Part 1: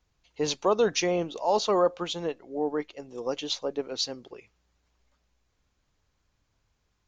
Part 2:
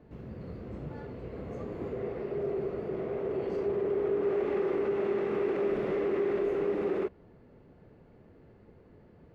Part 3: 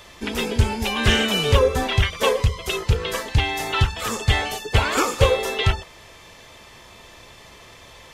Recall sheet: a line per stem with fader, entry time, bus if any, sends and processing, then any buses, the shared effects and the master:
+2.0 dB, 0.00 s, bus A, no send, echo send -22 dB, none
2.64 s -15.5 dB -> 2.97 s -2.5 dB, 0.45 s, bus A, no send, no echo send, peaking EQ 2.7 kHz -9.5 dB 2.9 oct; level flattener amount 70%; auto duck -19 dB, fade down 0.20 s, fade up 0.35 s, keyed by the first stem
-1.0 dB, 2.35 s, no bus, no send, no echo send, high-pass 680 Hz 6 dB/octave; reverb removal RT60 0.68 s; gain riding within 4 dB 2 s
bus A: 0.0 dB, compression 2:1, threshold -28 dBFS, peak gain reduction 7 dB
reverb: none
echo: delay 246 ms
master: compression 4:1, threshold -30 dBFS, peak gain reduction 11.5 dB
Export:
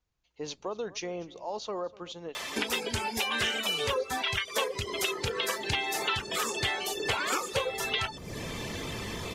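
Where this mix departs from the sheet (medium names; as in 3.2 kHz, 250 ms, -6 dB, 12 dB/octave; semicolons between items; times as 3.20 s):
stem 1 +2.0 dB -> -9.5 dB; stem 3 -1.0 dB -> +8.0 dB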